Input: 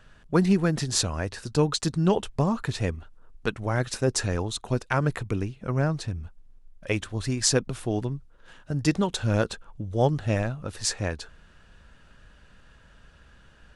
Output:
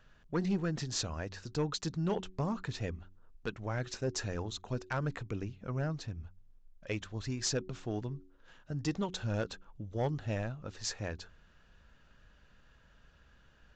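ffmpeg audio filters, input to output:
-af "bandreject=f=92.89:t=h:w=4,bandreject=f=185.78:t=h:w=4,bandreject=f=278.67:t=h:w=4,bandreject=f=371.56:t=h:w=4,aresample=16000,asoftclip=type=tanh:threshold=-15.5dB,aresample=44100,volume=-8.5dB"

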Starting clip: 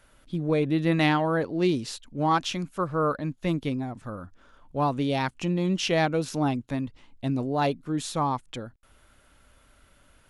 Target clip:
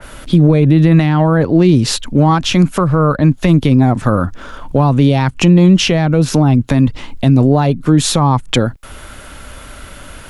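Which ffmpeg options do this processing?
-filter_complex "[0:a]acrossover=split=160[a][b];[b]acompressor=threshold=-34dB:ratio=10[c];[a][c]amix=inputs=2:normalize=0,alimiter=level_in=26.5dB:limit=-1dB:release=50:level=0:latency=1,adynamicequalizer=threshold=0.0447:dfrequency=2500:dqfactor=0.7:tfrequency=2500:tqfactor=0.7:attack=5:release=100:ratio=0.375:range=2.5:mode=cutabove:tftype=highshelf,volume=-1dB"

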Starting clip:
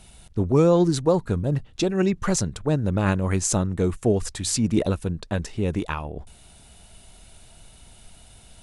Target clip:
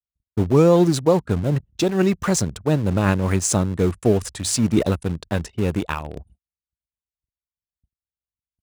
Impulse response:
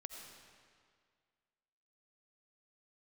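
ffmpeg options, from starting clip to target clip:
-filter_complex "[0:a]asplit=2[a][b];[b]aeval=exprs='val(0)*gte(abs(val(0)),0.0631)':c=same,volume=-7dB[c];[a][c]amix=inputs=2:normalize=0,anlmdn=0.158,highpass=f=48:w=0.5412,highpass=f=48:w=1.3066,agate=range=-45dB:threshold=-49dB:ratio=16:detection=peak"

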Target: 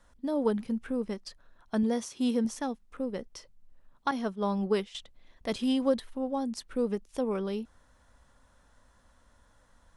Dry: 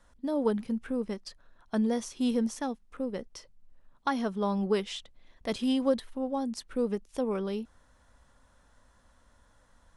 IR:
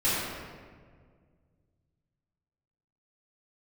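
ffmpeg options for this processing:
-filter_complex "[0:a]asettb=1/sr,asplit=3[a][b][c];[a]atrim=end=1.834[d];[b]atrim=start=1.83:end=2.45,asetpts=PTS-STARTPTS,afade=t=in:d=0.004:c=qsin,afade=t=out:st=0.616:d=0.004:c=qsin,highpass=83[e];[c]atrim=start=2.446[f];[d][e]acrossfade=d=0.004:c1=hsin:c2=qsin[g];[g][f]acrossfade=d=0.004:c1=qsin:c2=hsin,asettb=1/sr,asplit=3[h][i][j];[h]atrim=end=4.114[k];[i]atrim=start=4.11:end=4.95,asetpts=PTS-STARTPTS,afade=t=in:d=0.004:c=qsin,afade=t=out:st=0.836:d=0.004:c=qsin,agate=range=-33dB:threshold=-28dB:ratio=3:detection=peak[l];[j]atrim=start=4.946[m];[k][l]acrossfade=d=0.004:c1=hsin:c2=qsin[n];[n][m]acrossfade=d=0.004:c1=qsin:c2=hsin"

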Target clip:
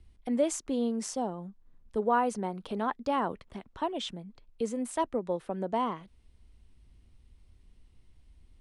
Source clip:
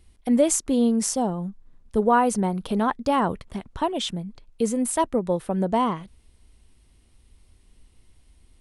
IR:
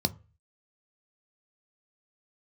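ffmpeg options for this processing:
-filter_complex "[0:a]lowpass=8k,bass=f=250:g=9,treble=f=4k:g=-3,acrossover=split=280|2300[a][b][c];[a]acompressor=threshold=-46dB:ratio=4[d];[d][b][c]amix=inputs=3:normalize=0,volume=-7dB"

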